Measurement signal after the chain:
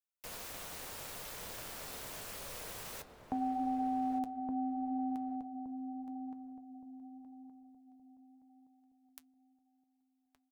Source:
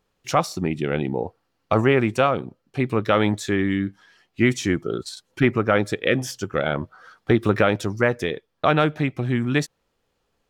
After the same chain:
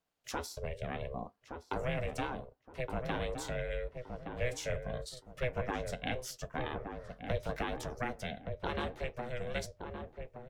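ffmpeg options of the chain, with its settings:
-filter_complex "[0:a]highpass=f=180:w=0.5412,highpass=f=180:w=1.3066,highshelf=f=8300:g=6.5,acrossover=split=300|3000[s0][s1][s2];[s1]acompressor=threshold=0.0631:ratio=3[s3];[s0][s3][s2]amix=inputs=3:normalize=0,aeval=exprs='val(0)*sin(2*PI*250*n/s)':c=same,flanger=delay=6.4:depth=5:regen=-67:speed=0.76:shape=sinusoidal,asplit=2[s4][s5];[s5]adelay=1169,lowpass=f=970:p=1,volume=0.562,asplit=2[s6][s7];[s7]adelay=1169,lowpass=f=970:p=1,volume=0.35,asplit=2[s8][s9];[s9]adelay=1169,lowpass=f=970:p=1,volume=0.35,asplit=2[s10][s11];[s11]adelay=1169,lowpass=f=970:p=1,volume=0.35[s12];[s4][s6][s8][s10][s12]amix=inputs=5:normalize=0,volume=0.501"

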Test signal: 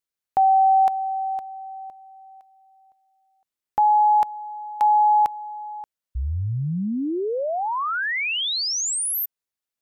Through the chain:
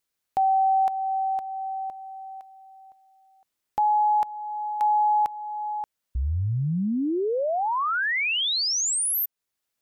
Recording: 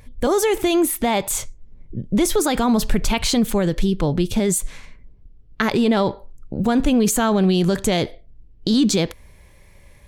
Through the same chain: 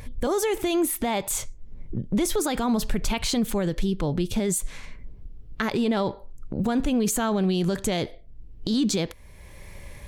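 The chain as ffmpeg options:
-af "acompressor=threshold=0.0158:ratio=2:attack=0.24:release=369:knee=6:detection=rms,volume=2.24"

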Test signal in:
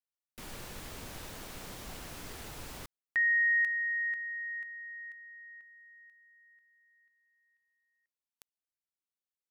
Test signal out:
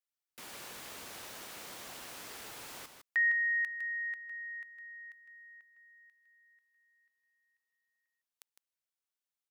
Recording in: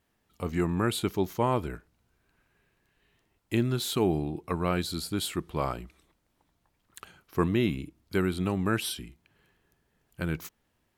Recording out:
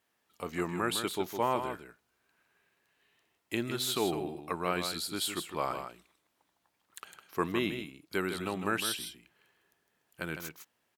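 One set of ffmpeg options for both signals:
-filter_complex "[0:a]highpass=f=580:p=1,asplit=2[s0][s1];[s1]aecho=0:1:157:0.398[s2];[s0][s2]amix=inputs=2:normalize=0"

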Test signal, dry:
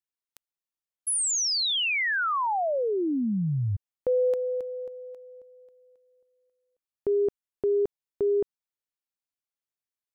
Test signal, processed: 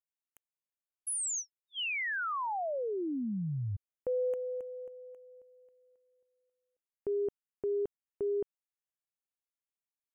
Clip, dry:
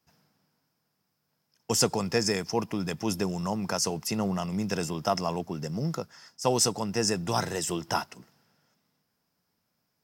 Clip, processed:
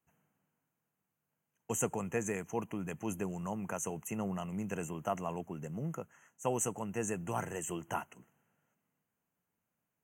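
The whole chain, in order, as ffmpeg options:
-af "asuperstop=centerf=4400:order=20:qfactor=1.5,volume=0.398"

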